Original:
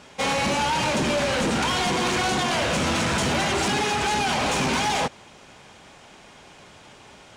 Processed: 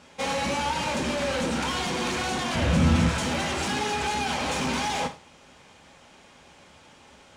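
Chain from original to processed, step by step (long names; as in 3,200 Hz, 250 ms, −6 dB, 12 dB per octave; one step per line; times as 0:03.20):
0:02.55–0:03.09: bass and treble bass +14 dB, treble −3 dB
reverb whose tail is shaped and stops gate 140 ms falling, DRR 6.5 dB
level −5.5 dB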